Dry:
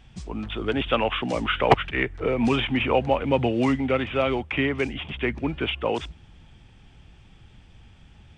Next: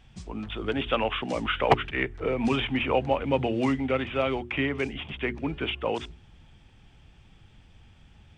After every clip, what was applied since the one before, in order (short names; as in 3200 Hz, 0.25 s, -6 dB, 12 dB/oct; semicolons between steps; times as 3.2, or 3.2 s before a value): notches 60/120/180/240/300/360/420 Hz; gain -3 dB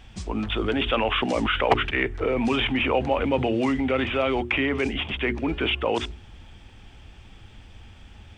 bell 150 Hz -10.5 dB 0.41 oct; in parallel at +0.5 dB: negative-ratio compressor -32 dBFS, ratio -1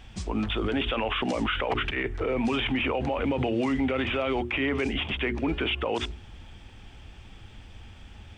limiter -18.5 dBFS, peak gain reduction 11.5 dB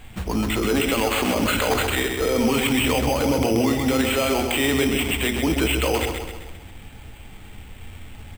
feedback echo 0.131 s, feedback 51%, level -6 dB; on a send at -9.5 dB: reverb RT60 0.50 s, pre-delay 4 ms; on the sum: careless resampling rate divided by 8×, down none, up hold; gain +4.5 dB